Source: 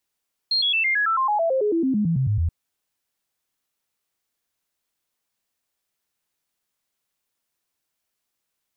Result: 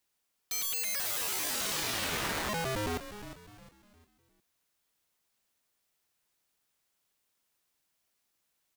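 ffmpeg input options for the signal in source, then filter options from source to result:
-f lavfi -i "aevalsrc='0.126*clip(min(mod(t,0.11),0.11-mod(t,0.11))/0.005,0,1)*sin(2*PI*4220*pow(2,-floor(t/0.11)/3)*mod(t,0.11))':d=1.98:s=44100"
-filter_complex "[0:a]asplit=2[s0][s1];[s1]aecho=0:1:487:0.447[s2];[s0][s2]amix=inputs=2:normalize=0,aeval=exprs='(mod(28.2*val(0)+1,2)-1)/28.2':c=same,asplit=2[s3][s4];[s4]asplit=4[s5][s6][s7][s8];[s5]adelay=356,afreqshift=-110,volume=0.266[s9];[s6]adelay=712,afreqshift=-220,volume=0.0933[s10];[s7]adelay=1068,afreqshift=-330,volume=0.0327[s11];[s8]adelay=1424,afreqshift=-440,volume=0.0114[s12];[s9][s10][s11][s12]amix=inputs=4:normalize=0[s13];[s3][s13]amix=inputs=2:normalize=0"

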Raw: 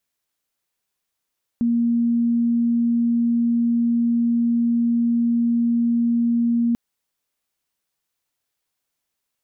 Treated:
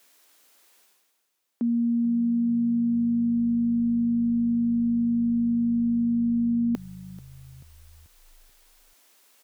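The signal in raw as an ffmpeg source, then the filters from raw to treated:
-f lavfi -i "aevalsrc='0.158*sin(2*PI*235*t)':d=5.14:s=44100"
-filter_complex "[0:a]highpass=f=250:w=0.5412,highpass=f=250:w=1.3066,areverse,acompressor=mode=upward:threshold=0.00794:ratio=2.5,areverse,asplit=6[s0][s1][s2][s3][s4][s5];[s1]adelay=436,afreqshift=-52,volume=0.112[s6];[s2]adelay=872,afreqshift=-104,volume=0.0631[s7];[s3]adelay=1308,afreqshift=-156,volume=0.0351[s8];[s4]adelay=1744,afreqshift=-208,volume=0.0197[s9];[s5]adelay=2180,afreqshift=-260,volume=0.0111[s10];[s0][s6][s7][s8][s9][s10]amix=inputs=6:normalize=0"

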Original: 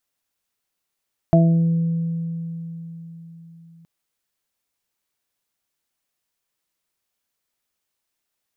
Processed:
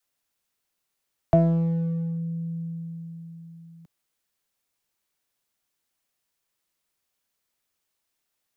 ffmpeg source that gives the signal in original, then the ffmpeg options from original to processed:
-f lavfi -i "aevalsrc='0.282*pow(10,-3*t/4.33)*sin(2*PI*166*t)+0.112*pow(10,-3*t/0.95)*sin(2*PI*332*t)+0.0299*pow(10,-3*t/2.47)*sin(2*PI*498*t)+0.251*pow(10,-3*t/0.43)*sin(2*PI*664*t)':d=2.52:s=44100"
-filter_complex "[0:a]adynamicequalizer=threshold=0.0316:dfrequency=200:dqfactor=1.4:tfrequency=200:tqfactor=1.4:attack=5:release=100:ratio=0.375:range=3:mode=cutabove:tftype=bell,acrossover=split=160|340|420[s0][s1][s2][s3];[s1]asoftclip=type=hard:threshold=0.0237[s4];[s0][s4][s2][s3]amix=inputs=4:normalize=0"

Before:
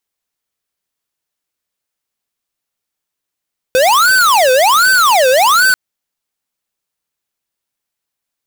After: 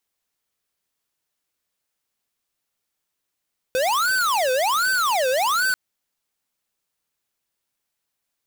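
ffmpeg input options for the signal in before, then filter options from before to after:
-f lavfi -i "aevalsrc='0.335*(2*lt(mod((1023.5*t-516.5/(2*PI*1.3)*sin(2*PI*1.3*t)),1),0.5)-1)':d=1.99:s=44100"
-af "alimiter=limit=0.0944:level=0:latency=1:release=12"

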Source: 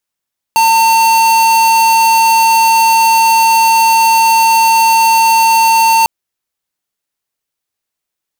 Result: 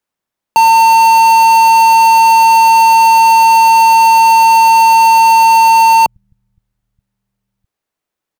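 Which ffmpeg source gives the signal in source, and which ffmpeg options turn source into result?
-f lavfi -i "aevalsrc='0.376*(2*lt(mod(904*t,1),0.5)-1)':d=5.5:s=44100"
-filter_complex "[0:a]highshelf=f=2200:g=-11.5,acrossover=split=130[s0][s1];[s0]aecho=1:1:100|260|516|925.6|1581:0.631|0.398|0.251|0.158|0.1[s2];[s1]acontrast=56[s3];[s2][s3]amix=inputs=2:normalize=0"

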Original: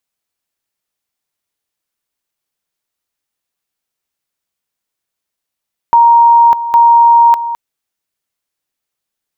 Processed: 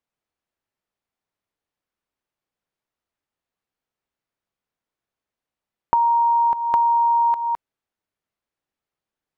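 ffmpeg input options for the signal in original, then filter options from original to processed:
-f lavfi -i "aevalsrc='pow(10,(-3-12.5*gte(mod(t,0.81),0.6))/20)*sin(2*PI*936*t)':d=1.62:s=44100"
-af "lowpass=f=1300:p=1,acompressor=threshold=0.158:ratio=10"

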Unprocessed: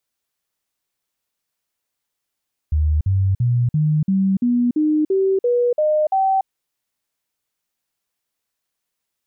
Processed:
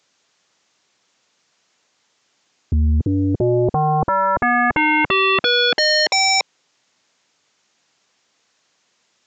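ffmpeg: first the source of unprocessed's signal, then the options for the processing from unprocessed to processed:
-f lavfi -i "aevalsrc='0.2*clip(min(mod(t,0.34),0.29-mod(t,0.34))/0.005,0,1)*sin(2*PI*76.4*pow(2,floor(t/0.34)/3)*mod(t,0.34))':d=3.74:s=44100"
-af "highpass=150,aresample=16000,aeval=exprs='0.211*sin(PI/2*5.62*val(0)/0.211)':c=same,aresample=44100"

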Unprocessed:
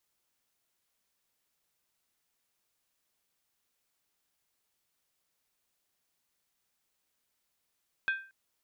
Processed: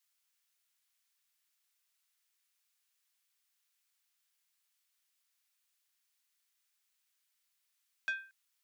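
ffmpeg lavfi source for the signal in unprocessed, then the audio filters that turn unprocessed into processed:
-f lavfi -i "aevalsrc='0.0631*pow(10,-3*t/0.39)*sin(2*PI*1570*t)+0.0237*pow(10,-3*t/0.309)*sin(2*PI*2502.6*t)+0.00891*pow(10,-3*t/0.267)*sin(2*PI*3353.5*t)+0.00335*pow(10,-3*t/0.257)*sin(2*PI*3604.7*t)+0.00126*pow(10,-3*t/0.239)*sin(2*PI*4165.2*t)':d=0.23:s=44100"
-af "highpass=1500,asoftclip=type=tanh:threshold=0.0501"

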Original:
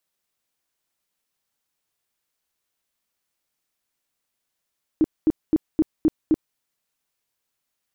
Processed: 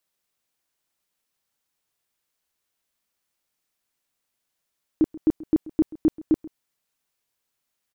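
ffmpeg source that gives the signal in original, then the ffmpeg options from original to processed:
-f lavfi -i "aevalsrc='0.224*sin(2*PI*314*mod(t,0.26))*lt(mod(t,0.26),10/314)':d=1.56:s=44100"
-af "aecho=1:1:133:0.106"

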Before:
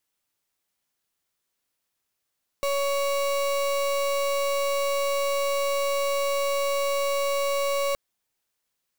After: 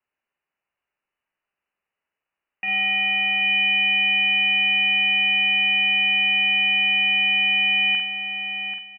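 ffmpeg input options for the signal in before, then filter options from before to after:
-f lavfi -i "aevalsrc='0.0562*(2*lt(mod(560*t,1),0.34)-1)':d=5.32:s=44100"
-filter_complex "[0:a]asplit=2[s0][s1];[s1]aecho=0:1:786|1572|2358:0.398|0.0836|0.0176[s2];[s0][s2]amix=inputs=2:normalize=0,lowpass=f=2600:t=q:w=0.5098,lowpass=f=2600:t=q:w=0.6013,lowpass=f=2600:t=q:w=0.9,lowpass=f=2600:t=q:w=2.563,afreqshift=-3000,asplit=2[s3][s4];[s4]aecho=0:1:45|50|93:0.447|0.376|0.106[s5];[s3][s5]amix=inputs=2:normalize=0"

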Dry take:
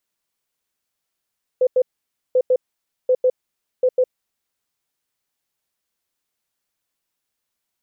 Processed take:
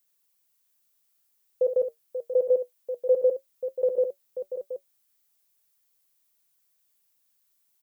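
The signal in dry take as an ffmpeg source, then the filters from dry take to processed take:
-f lavfi -i "aevalsrc='0.251*sin(2*PI*508*t)*clip(min(mod(mod(t,0.74),0.15),0.06-mod(mod(t,0.74),0.15))/0.005,0,1)*lt(mod(t,0.74),0.3)':d=2.96:s=44100"
-filter_complex "[0:a]aemphasis=mode=production:type=50kf,flanger=delay=5.2:depth=1.3:regen=70:speed=0.26:shape=triangular,asplit=2[s0][s1];[s1]aecho=0:1:67|536|724:0.335|0.335|0.282[s2];[s0][s2]amix=inputs=2:normalize=0"

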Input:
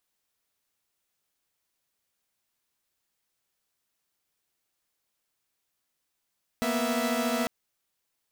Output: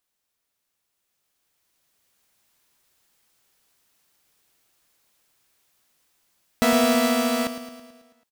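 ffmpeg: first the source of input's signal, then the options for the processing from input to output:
-f lavfi -i "aevalsrc='0.0422*((2*mod(233.08*t,1)-1)+(2*mod(246.94*t,1)-1)+(2*mod(659.26*t,1)-1))':d=0.85:s=44100"
-filter_complex "[0:a]dynaudnorm=f=260:g=13:m=3.98,asplit=2[s0][s1];[s1]aecho=0:1:109|218|327|436|545|654|763:0.282|0.163|0.0948|0.055|0.0319|0.0185|0.0107[s2];[s0][s2]amix=inputs=2:normalize=0"

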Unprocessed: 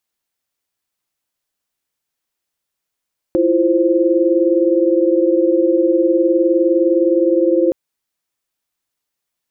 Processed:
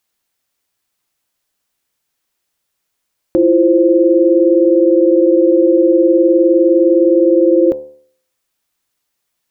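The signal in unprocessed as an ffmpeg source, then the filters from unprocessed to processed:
-f lavfi -i "aevalsrc='0.168*(sin(2*PI*329.63*t)+sin(2*PI*349.23*t)+sin(2*PI*523.25*t))':d=4.37:s=44100"
-filter_complex "[0:a]bandreject=f=74.02:t=h:w=4,bandreject=f=148.04:t=h:w=4,bandreject=f=222.06:t=h:w=4,bandreject=f=296.08:t=h:w=4,bandreject=f=370.1:t=h:w=4,bandreject=f=444.12:t=h:w=4,bandreject=f=518.14:t=h:w=4,bandreject=f=592.16:t=h:w=4,bandreject=f=666.18:t=h:w=4,bandreject=f=740.2:t=h:w=4,bandreject=f=814.22:t=h:w=4,bandreject=f=888.24:t=h:w=4,bandreject=f=962.26:t=h:w=4,bandreject=f=1036.28:t=h:w=4,asplit=2[s0][s1];[s1]alimiter=limit=0.188:level=0:latency=1:release=39,volume=1.26[s2];[s0][s2]amix=inputs=2:normalize=0"

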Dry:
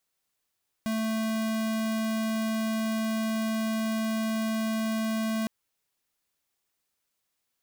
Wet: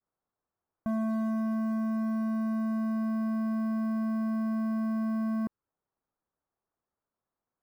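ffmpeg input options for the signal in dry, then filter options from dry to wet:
-f lavfi -i "aevalsrc='0.0376*(2*lt(mod(221*t,1),0.5)-1)':d=4.61:s=44100"
-af "lowpass=f=1300:w=0.5412,lowpass=f=1300:w=1.3066,adynamicequalizer=threshold=0.00316:dfrequency=710:dqfactor=1.5:tfrequency=710:tqfactor=1.5:attack=5:release=100:ratio=0.375:range=4:mode=cutabove:tftype=bell,acrusher=bits=9:mode=log:mix=0:aa=0.000001"

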